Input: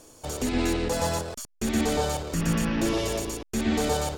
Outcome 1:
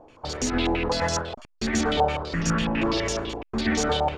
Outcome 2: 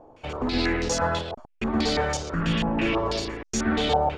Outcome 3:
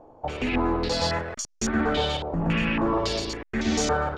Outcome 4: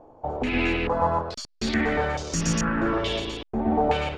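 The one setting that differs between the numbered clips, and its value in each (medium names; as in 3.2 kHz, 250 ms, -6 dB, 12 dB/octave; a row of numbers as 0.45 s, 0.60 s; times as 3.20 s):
step-sequenced low-pass, rate: 12 Hz, 6.1 Hz, 3.6 Hz, 2.3 Hz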